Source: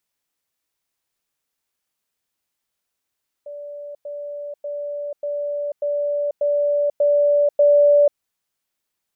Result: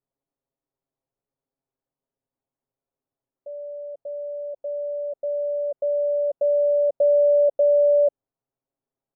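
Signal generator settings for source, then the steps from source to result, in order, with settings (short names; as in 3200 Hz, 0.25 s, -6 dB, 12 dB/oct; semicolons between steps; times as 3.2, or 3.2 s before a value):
level ladder 581 Hz -31 dBFS, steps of 3 dB, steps 8, 0.49 s 0.10 s
Chebyshev low-pass 590 Hz, order 2; comb 7.4 ms, depth 77%; limiter -13.5 dBFS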